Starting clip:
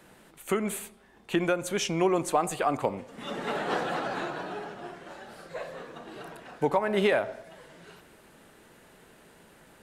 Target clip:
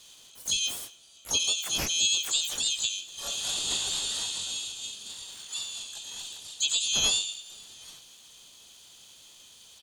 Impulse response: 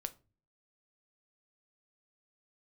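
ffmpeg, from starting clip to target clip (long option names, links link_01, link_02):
-filter_complex "[0:a]afftfilt=real='real(if(lt(b,272),68*(eq(floor(b/68),0)*2+eq(floor(b/68),1)*3+eq(floor(b/68),2)*0+eq(floor(b/68),3)*1)+mod(b,68),b),0)':imag='imag(if(lt(b,272),68*(eq(floor(b/68),0)*2+eq(floor(b/68),1)*3+eq(floor(b/68),2)*0+eq(floor(b/68),3)*1)+mod(b,68),b),0)':win_size=2048:overlap=0.75,acrossover=split=3100[link_01][link_02];[link_02]acompressor=threshold=-34dB:ratio=4:attack=1:release=60[link_03];[link_01][link_03]amix=inputs=2:normalize=0,asplit=4[link_04][link_05][link_06][link_07];[link_05]asetrate=35002,aresample=44100,atempo=1.25992,volume=-10dB[link_08];[link_06]asetrate=55563,aresample=44100,atempo=0.793701,volume=-9dB[link_09];[link_07]asetrate=88200,aresample=44100,atempo=0.5,volume=-1dB[link_10];[link_04][link_08][link_09][link_10]amix=inputs=4:normalize=0"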